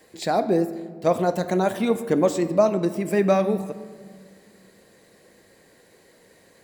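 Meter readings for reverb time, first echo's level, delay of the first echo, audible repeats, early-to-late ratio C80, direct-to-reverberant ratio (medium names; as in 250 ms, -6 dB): 1.8 s, no echo, no echo, no echo, 14.5 dB, 11.0 dB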